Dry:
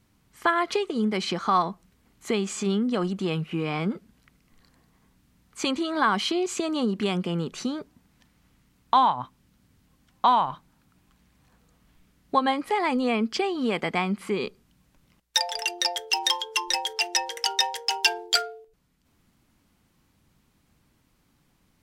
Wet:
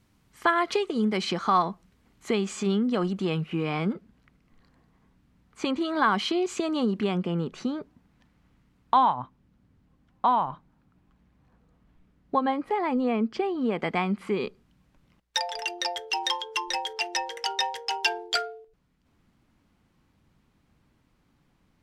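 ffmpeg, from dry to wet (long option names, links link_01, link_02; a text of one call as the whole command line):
ffmpeg -i in.wav -af "asetnsamples=nb_out_samples=441:pad=0,asendcmd='1.52 lowpass f 5000;3.93 lowpass f 1900;5.81 lowpass f 4000;7.01 lowpass f 1900;9.2 lowpass f 1000;13.8 lowpass f 2700',lowpass=frequency=8700:poles=1" out.wav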